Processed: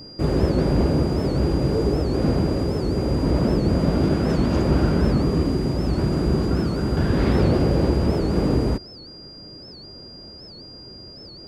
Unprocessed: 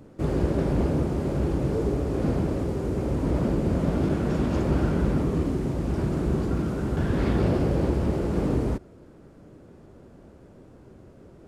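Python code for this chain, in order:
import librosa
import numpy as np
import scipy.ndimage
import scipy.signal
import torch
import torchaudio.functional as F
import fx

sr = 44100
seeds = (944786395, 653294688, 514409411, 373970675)

y = x + 10.0 ** (-45.0 / 20.0) * np.sin(2.0 * np.pi * 4800.0 * np.arange(len(x)) / sr)
y = fx.record_warp(y, sr, rpm=78.0, depth_cents=160.0)
y = y * 10.0 ** (4.5 / 20.0)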